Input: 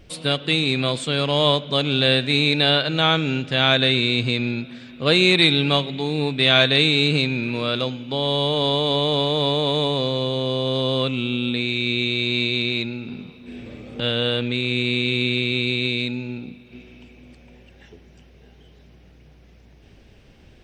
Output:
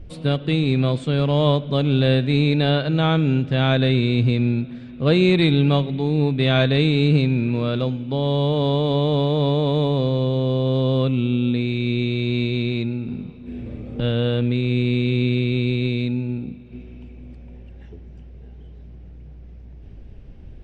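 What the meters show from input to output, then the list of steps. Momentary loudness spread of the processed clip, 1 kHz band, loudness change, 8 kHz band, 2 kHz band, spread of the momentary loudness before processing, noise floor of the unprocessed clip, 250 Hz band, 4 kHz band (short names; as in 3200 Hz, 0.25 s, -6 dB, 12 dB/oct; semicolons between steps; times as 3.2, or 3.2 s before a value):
9 LU, -2.5 dB, -0.5 dB, under -10 dB, -7.0 dB, 11 LU, -50 dBFS, +4.0 dB, -9.5 dB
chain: tilt -3.5 dB/oct; gain -3 dB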